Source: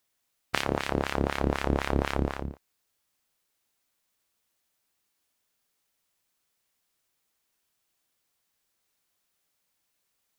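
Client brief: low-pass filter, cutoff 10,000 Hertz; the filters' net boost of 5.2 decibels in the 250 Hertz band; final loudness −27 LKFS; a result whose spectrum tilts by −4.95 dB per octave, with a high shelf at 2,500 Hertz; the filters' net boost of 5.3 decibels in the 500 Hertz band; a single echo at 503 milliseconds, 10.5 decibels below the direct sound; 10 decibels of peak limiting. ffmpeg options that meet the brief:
ffmpeg -i in.wav -af "lowpass=10000,equalizer=frequency=250:width_type=o:gain=5,equalizer=frequency=500:width_type=o:gain=5,highshelf=frequency=2500:gain=3.5,alimiter=limit=-11dB:level=0:latency=1,aecho=1:1:503:0.299,volume=3dB" out.wav

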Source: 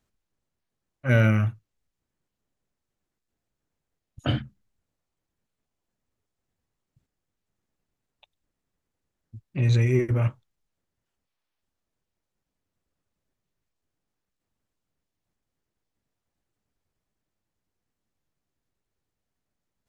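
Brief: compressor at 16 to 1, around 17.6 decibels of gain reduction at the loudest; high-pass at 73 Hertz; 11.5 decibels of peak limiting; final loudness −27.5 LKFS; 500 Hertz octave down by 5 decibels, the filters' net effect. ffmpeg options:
ffmpeg -i in.wav -af "highpass=73,equalizer=frequency=500:width_type=o:gain=-7,acompressor=threshold=-34dB:ratio=16,volume=17dB,alimiter=limit=-16.5dB:level=0:latency=1" out.wav

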